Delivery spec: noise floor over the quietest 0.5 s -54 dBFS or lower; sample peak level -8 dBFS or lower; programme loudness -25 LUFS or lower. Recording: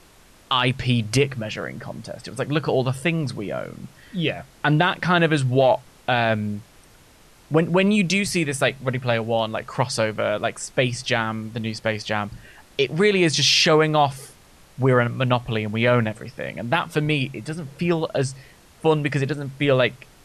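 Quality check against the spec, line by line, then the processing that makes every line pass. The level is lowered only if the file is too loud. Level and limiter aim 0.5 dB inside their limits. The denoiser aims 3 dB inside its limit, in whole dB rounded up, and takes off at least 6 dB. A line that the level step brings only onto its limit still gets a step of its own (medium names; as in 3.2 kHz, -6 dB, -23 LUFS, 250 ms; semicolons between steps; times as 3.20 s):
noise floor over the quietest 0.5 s -51 dBFS: fail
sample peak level -7.5 dBFS: fail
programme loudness -22.0 LUFS: fail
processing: trim -3.5 dB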